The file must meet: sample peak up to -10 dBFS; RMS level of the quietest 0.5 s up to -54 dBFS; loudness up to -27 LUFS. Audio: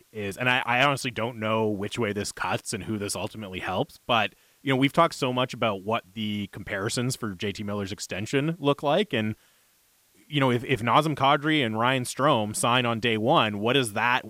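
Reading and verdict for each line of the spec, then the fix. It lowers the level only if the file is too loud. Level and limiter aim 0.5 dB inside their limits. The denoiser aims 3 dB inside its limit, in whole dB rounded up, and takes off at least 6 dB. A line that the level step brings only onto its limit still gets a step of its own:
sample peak -7.5 dBFS: fail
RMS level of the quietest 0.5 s -64 dBFS: pass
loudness -25.5 LUFS: fail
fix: trim -2 dB; peak limiter -10.5 dBFS

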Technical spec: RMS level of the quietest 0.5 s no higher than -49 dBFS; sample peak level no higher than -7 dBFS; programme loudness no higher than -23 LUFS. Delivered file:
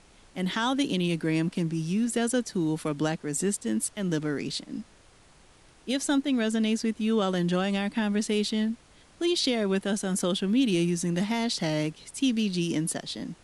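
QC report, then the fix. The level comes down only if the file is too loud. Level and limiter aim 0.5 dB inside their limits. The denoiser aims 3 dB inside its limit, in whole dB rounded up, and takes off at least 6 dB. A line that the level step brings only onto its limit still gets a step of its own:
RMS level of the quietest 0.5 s -56 dBFS: pass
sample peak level -15.0 dBFS: pass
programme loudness -27.5 LUFS: pass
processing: none needed

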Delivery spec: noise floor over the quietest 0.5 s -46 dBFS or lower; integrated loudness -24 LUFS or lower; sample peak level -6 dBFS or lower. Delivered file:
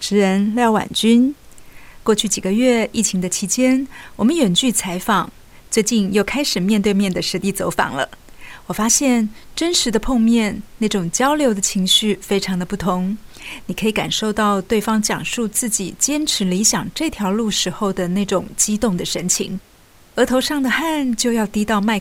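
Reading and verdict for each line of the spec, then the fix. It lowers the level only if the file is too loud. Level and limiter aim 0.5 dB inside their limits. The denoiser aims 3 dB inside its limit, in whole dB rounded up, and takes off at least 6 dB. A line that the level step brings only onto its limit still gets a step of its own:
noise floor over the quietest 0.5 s -48 dBFS: pass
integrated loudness -18.0 LUFS: fail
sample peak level -2.0 dBFS: fail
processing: trim -6.5 dB

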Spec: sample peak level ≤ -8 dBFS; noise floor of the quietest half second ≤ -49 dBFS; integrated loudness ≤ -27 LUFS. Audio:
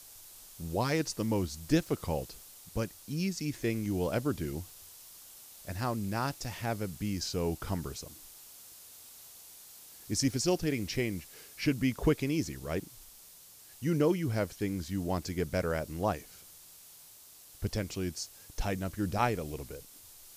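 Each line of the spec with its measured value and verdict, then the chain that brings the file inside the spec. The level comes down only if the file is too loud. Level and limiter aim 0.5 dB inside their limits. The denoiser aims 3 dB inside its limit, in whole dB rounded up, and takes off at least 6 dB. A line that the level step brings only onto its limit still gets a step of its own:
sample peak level -14.0 dBFS: pass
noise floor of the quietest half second -54 dBFS: pass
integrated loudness -33.5 LUFS: pass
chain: none needed

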